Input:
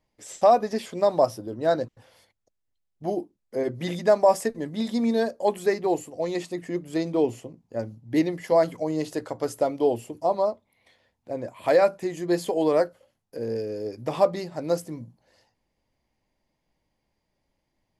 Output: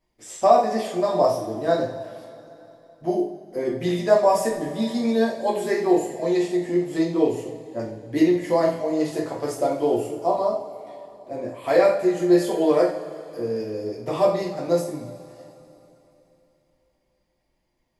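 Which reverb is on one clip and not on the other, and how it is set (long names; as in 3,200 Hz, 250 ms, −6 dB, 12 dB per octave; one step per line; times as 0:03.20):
coupled-rooms reverb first 0.45 s, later 3.4 s, from −19 dB, DRR −5 dB
level −3.5 dB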